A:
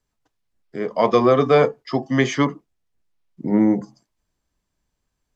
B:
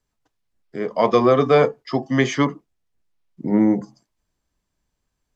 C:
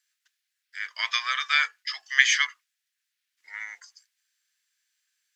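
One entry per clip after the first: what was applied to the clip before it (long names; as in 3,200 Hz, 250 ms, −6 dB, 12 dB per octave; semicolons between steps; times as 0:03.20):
no processing that can be heard
Chebyshev high-pass filter 1,600 Hz, order 4; level +7.5 dB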